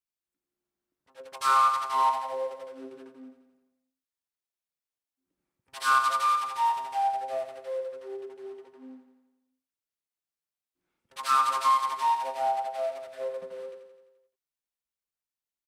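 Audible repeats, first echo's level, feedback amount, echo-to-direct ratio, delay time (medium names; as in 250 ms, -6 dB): 6, -8.0 dB, 59%, -6.0 dB, 86 ms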